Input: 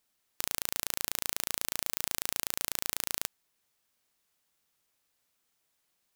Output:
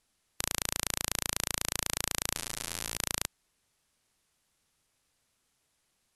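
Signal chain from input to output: brick-wall FIR low-pass 12 kHz; bass shelf 160 Hz +10 dB; 2.35–2.96 s: detune thickener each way 34 cents -> 45 cents; trim +3 dB

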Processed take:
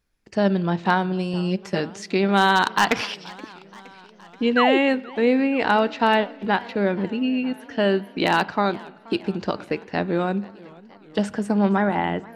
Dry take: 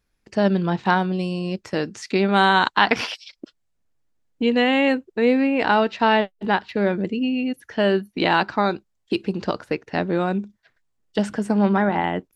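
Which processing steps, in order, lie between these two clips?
1.33–1.80 s: comb 5 ms, depth 79%; spring tank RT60 1 s, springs 35 ms, chirp 25 ms, DRR 20 dB; wavefolder -6.5 dBFS; 4.56–4.78 s: painted sound fall 310–1700 Hz -19 dBFS; modulated delay 474 ms, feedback 67%, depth 200 cents, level -22.5 dB; trim -1 dB

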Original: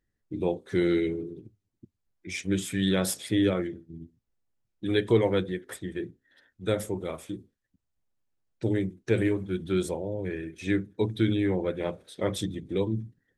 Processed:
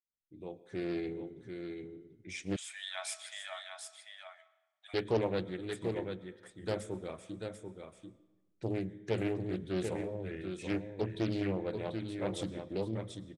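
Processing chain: fade-in on the opening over 1.34 s; delay 739 ms -6.5 dB; algorithmic reverb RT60 1.1 s, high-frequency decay 0.75×, pre-delay 75 ms, DRR 17 dB; resampled via 22.05 kHz; 2.56–4.94 s: brick-wall FIR high-pass 600 Hz; loudspeaker Doppler distortion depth 0.52 ms; trim -8 dB

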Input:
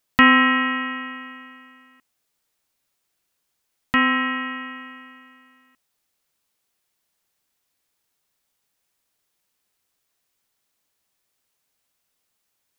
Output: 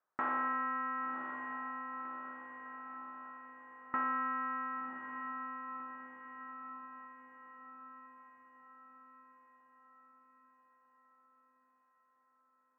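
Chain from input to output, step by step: in parallel at -3 dB: sine folder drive 12 dB, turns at -1 dBFS; on the sum: compression 4:1, threshold -15 dBFS, peak gain reduction 10 dB; steep low-pass 1.4 kHz 36 dB/octave; differentiator; echo that smears into a reverb 1071 ms, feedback 54%, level -6.5 dB; trim +2 dB

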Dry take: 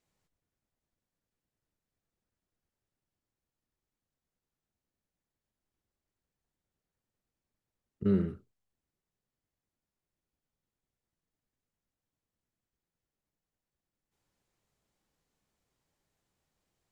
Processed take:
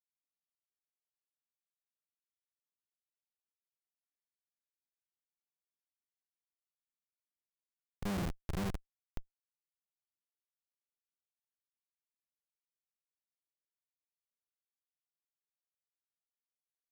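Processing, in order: backward echo that repeats 270 ms, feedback 60%, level -6.5 dB; Schmitt trigger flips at -33 dBFS; trim +9 dB

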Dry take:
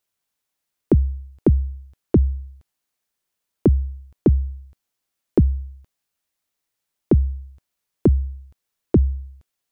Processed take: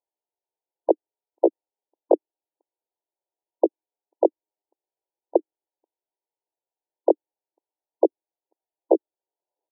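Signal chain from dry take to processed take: tape stop on the ending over 0.77 s; pitch shift +7.5 st; brick-wall FIR band-pass 300–1000 Hz

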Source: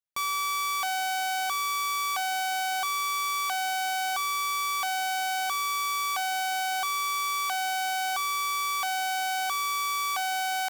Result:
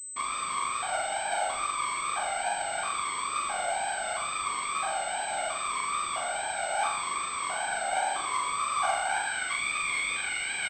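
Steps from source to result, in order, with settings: wow and flutter 77 cents; flange 0.86 Hz, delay 2.2 ms, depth 1.4 ms, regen +73%; whisper effect; on a send: flutter echo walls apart 7.2 m, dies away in 0.58 s; on the sum: high-pass sweep 130 Hz -> 2.1 kHz, 7.61–9.60 s; doubling 28 ms -12 dB; class-D stage that switches slowly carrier 8.1 kHz

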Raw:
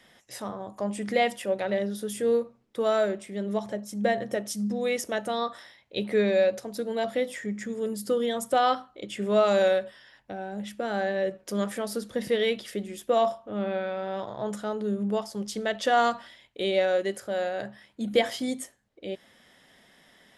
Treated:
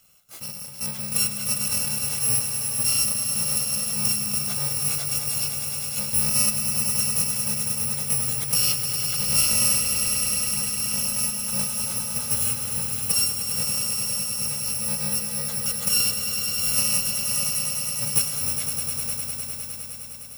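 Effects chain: bit-reversed sample order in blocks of 128 samples; peaking EQ 1.7 kHz -2.5 dB 0.28 oct; on a send: echo with a slow build-up 102 ms, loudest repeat 5, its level -9 dB

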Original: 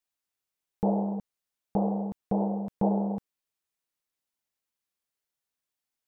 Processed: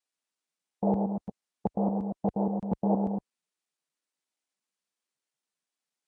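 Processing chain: time reversed locally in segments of 118 ms; high-pass 44 Hz 12 dB/octave; Vorbis 64 kbps 22.05 kHz

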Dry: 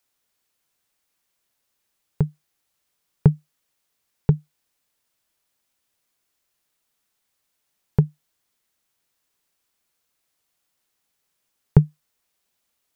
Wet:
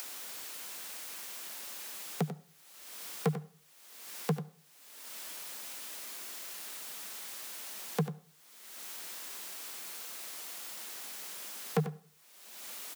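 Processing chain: bass shelf 250 Hz -7.5 dB; upward compressor, threshold -27 dBFS; hard clipper -20 dBFS, distortion -6 dB; steep high-pass 170 Hz 72 dB/octave; echo from a far wall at 16 m, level -11 dB; on a send at -18.5 dB: reverberation RT60 0.45 s, pre-delay 63 ms; on the sum: trim +5 dB

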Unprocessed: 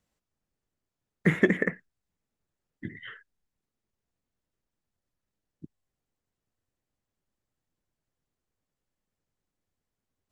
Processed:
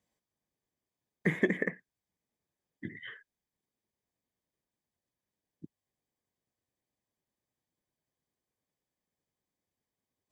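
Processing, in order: in parallel at -0.5 dB: compression, threshold -30 dBFS, peak gain reduction 14 dB; on the sum: comb of notches 1.4 kHz; trim -7 dB

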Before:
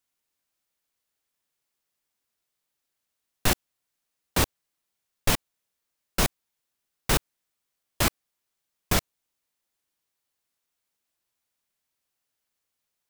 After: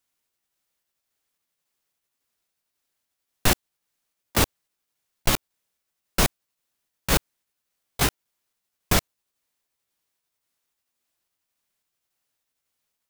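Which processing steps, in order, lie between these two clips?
pitch shift switched off and on +3.5 st, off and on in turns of 275 ms; trim +3 dB

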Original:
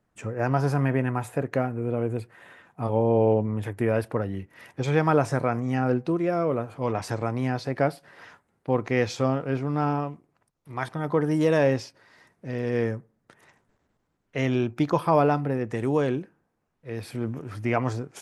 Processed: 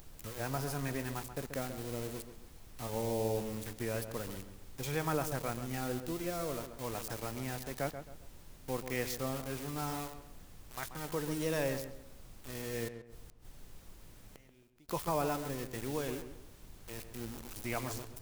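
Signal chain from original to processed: small samples zeroed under -33 dBFS; added noise brown -38 dBFS; pre-emphasis filter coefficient 0.8; 12.88–14.89 s: inverted gate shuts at -36 dBFS, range -27 dB; on a send: filtered feedback delay 134 ms, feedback 35%, low-pass 1.9 kHz, level -9 dB

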